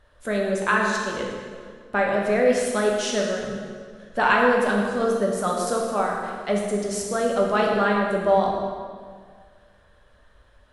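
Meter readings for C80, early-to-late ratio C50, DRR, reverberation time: 3.0 dB, 1.5 dB, −1.5 dB, 1.9 s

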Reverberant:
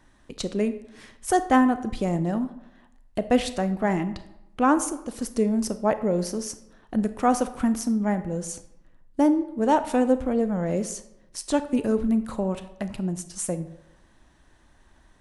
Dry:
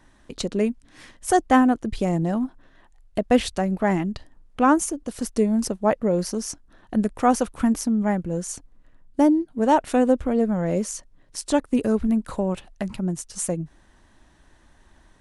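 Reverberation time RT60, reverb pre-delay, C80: 0.90 s, 29 ms, 15.5 dB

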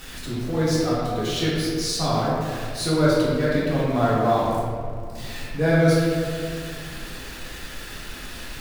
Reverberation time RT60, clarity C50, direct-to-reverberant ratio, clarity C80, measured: 2.2 s, −2.0 dB, −8.5 dB, 0.0 dB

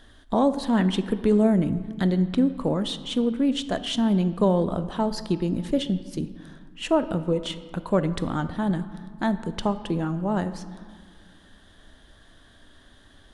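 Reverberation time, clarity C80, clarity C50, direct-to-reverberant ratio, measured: 1.8 s, 14.5 dB, 13.5 dB, 11.5 dB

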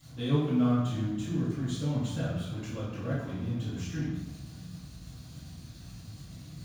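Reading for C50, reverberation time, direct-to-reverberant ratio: −1.0 dB, 1.1 s, −19.0 dB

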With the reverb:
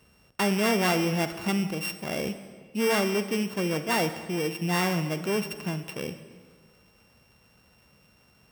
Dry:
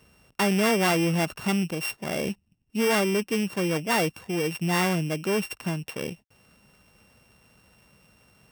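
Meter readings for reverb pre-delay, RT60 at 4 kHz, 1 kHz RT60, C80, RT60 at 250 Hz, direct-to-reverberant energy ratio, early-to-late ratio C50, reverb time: 35 ms, 1.3 s, 1.6 s, 11.5 dB, 1.7 s, 9.5 dB, 10.5 dB, 1.6 s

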